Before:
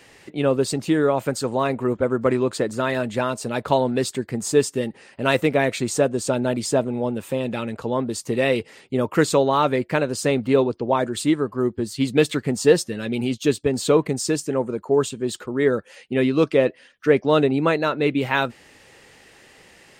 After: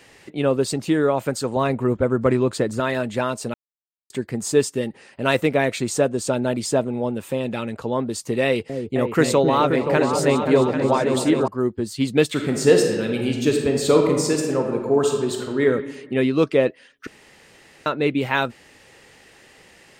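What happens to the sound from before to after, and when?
1.56–2.80 s: bass shelf 140 Hz +9 dB
3.54–4.10 s: mute
8.43–11.48 s: delay with an opening low-pass 263 ms, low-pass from 400 Hz, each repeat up 2 oct, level -3 dB
12.28–15.63 s: reverb throw, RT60 1.4 s, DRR 2 dB
17.07–17.86 s: room tone

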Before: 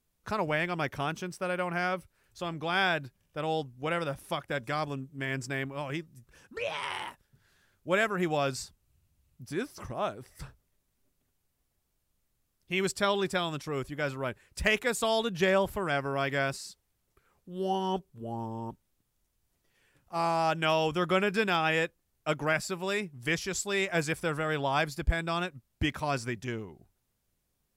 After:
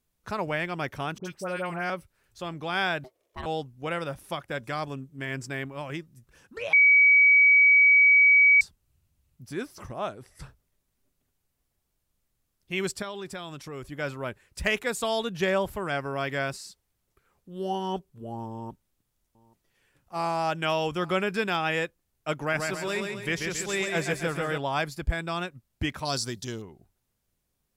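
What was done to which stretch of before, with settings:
1.18–1.90 s: phase dispersion highs, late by 71 ms, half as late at 1.5 kHz
3.04–3.46 s: ring modulator 510 Hz
6.73–8.61 s: bleep 2.27 kHz -14 dBFS
9.95–10.43 s: brick-wall FIR low-pass 13 kHz
13.02–13.83 s: compression 2.5:1, threshold -37 dBFS
18.52–21.15 s: delay 829 ms -23.5 dB
22.39–24.58 s: feedback delay 137 ms, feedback 47%, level -4.5 dB
26.05–26.62 s: resonant high shelf 3.1 kHz +9 dB, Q 3

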